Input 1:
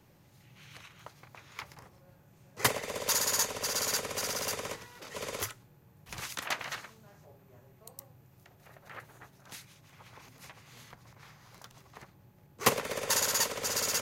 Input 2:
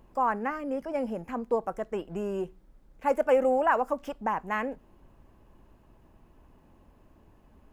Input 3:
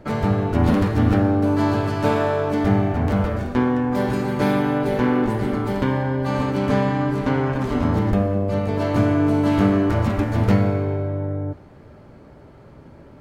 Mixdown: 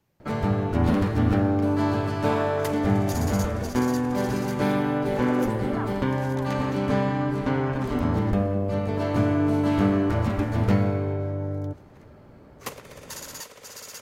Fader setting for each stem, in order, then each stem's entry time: −10.0, −13.0, −4.0 decibels; 0.00, 2.10, 0.20 seconds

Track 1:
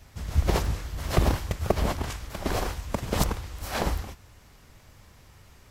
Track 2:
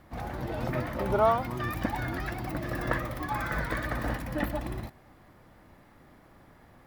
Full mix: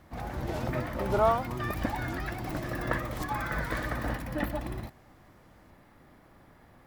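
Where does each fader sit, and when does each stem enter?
−15.5, −1.0 decibels; 0.00, 0.00 seconds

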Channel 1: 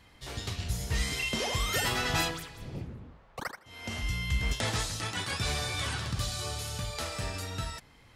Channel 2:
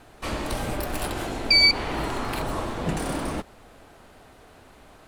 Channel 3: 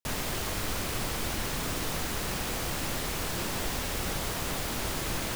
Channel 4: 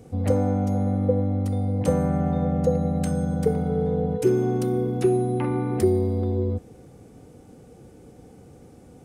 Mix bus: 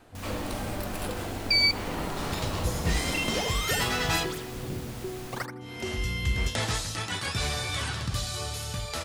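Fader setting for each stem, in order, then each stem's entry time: +2.0, −5.5, −11.0, −17.0 decibels; 1.95, 0.00, 0.10, 0.00 seconds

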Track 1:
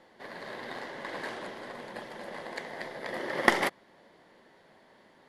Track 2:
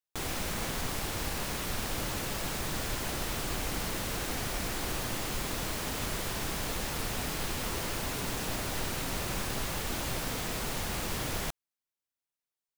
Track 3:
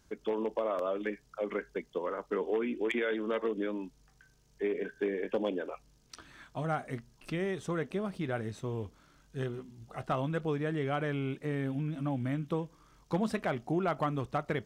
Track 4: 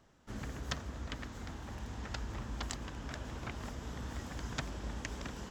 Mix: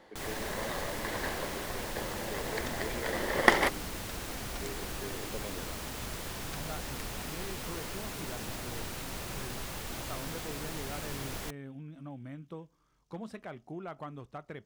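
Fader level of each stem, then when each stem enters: +1.0, −5.5, −11.0, −7.0 decibels; 0.00, 0.00, 0.00, 1.95 seconds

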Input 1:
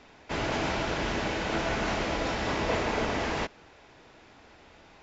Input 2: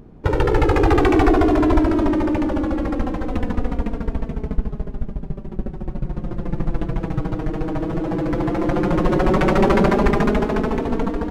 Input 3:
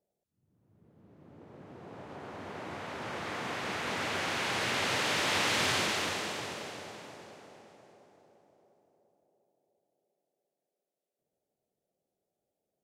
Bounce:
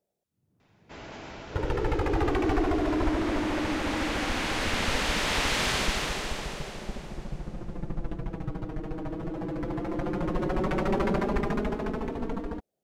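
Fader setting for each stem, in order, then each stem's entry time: −13.0, −11.0, +1.5 decibels; 0.60, 1.30, 0.00 seconds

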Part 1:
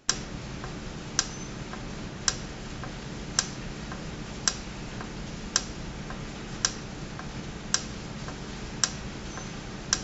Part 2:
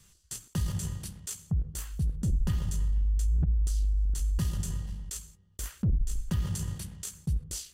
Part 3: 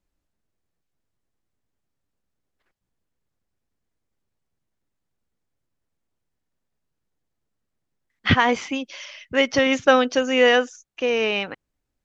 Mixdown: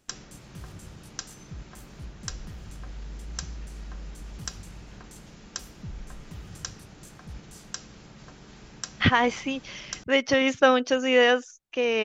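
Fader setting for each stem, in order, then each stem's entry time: −10.5, −13.0, −3.0 decibels; 0.00, 0.00, 0.75 seconds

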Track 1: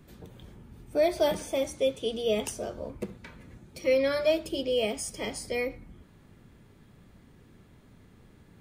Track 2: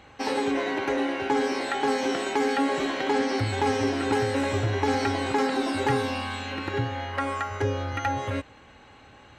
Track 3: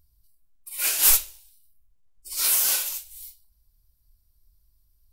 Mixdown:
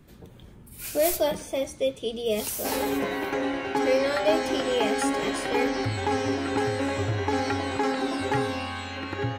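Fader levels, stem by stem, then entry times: +0.5, −1.5, −12.5 decibels; 0.00, 2.45, 0.00 seconds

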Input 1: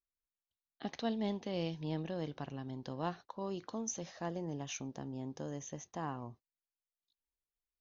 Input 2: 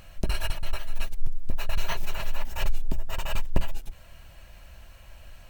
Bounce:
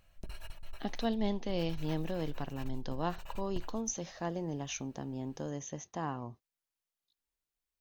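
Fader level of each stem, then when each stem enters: +3.0, −18.0 decibels; 0.00, 0.00 seconds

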